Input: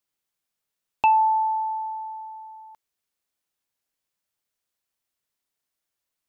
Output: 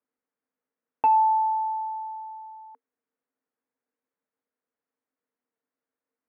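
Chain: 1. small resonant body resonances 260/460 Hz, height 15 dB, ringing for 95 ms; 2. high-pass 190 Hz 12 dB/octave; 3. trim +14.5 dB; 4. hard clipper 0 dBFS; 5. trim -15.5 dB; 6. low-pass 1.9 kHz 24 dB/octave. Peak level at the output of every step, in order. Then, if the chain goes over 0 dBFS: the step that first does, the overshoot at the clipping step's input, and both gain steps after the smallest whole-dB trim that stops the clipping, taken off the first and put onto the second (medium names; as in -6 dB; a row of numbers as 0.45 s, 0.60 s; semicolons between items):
-9.5 dBFS, -9.5 dBFS, +5.0 dBFS, 0.0 dBFS, -15.5 dBFS, -14.0 dBFS; step 3, 5.0 dB; step 3 +9.5 dB, step 5 -10.5 dB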